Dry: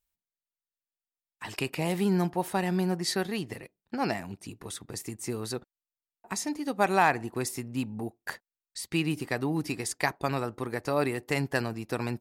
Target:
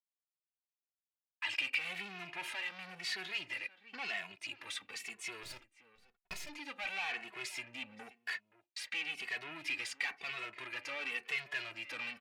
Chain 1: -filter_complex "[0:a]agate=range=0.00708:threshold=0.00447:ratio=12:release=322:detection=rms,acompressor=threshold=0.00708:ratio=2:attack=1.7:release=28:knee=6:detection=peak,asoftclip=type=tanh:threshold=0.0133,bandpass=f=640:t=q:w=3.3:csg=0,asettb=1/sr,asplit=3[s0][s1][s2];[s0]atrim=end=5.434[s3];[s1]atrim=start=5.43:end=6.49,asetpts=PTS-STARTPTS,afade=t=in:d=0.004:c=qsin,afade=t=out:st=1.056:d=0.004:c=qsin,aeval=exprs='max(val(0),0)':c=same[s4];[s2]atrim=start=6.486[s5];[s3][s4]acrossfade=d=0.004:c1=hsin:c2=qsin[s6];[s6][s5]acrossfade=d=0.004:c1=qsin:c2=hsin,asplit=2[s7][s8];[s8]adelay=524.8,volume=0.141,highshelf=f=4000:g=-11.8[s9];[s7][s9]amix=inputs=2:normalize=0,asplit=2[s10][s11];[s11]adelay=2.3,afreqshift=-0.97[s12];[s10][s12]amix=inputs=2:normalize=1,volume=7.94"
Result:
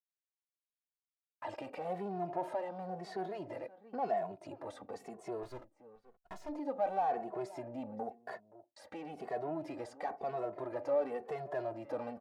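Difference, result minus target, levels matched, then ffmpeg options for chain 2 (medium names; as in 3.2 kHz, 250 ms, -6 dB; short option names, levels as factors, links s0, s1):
500 Hz band +17.0 dB; compression: peak gain reduction +5.5 dB
-filter_complex "[0:a]agate=range=0.00708:threshold=0.00447:ratio=12:release=322:detection=rms,acompressor=threshold=0.0251:ratio=2:attack=1.7:release=28:knee=6:detection=peak,asoftclip=type=tanh:threshold=0.0133,bandpass=f=2500:t=q:w=3.3:csg=0,asettb=1/sr,asplit=3[s0][s1][s2];[s0]atrim=end=5.434[s3];[s1]atrim=start=5.43:end=6.49,asetpts=PTS-STARTPTS,afade=t=in:d=0.004:c=qsin,afade=t=out:st=1.056:d=0.004:c=qsin,aeval=exprs='max(val(0),0)':c=same[s4];[s2]atrim=start=6.486[s5];[s3][s4]acrossfade=d=0.004:c1=hsin:c2=qsin[s6];[s6][s5]acrossfade=d=0.004:c1=qsin:c2=hsin,asplit=2[s7][s8];[s8]adelay=524.8,volume=0.141,highshelf=f=4000:g=-11.8[s9];[s7][s9]amix=inputs=2:normalize=0,asplit=2[s10][s11];[s11]adelay=2.3,afreqshift=-0.97[s12];[s10][s12]amix=inputs=2:normalize=1,volume=7.94"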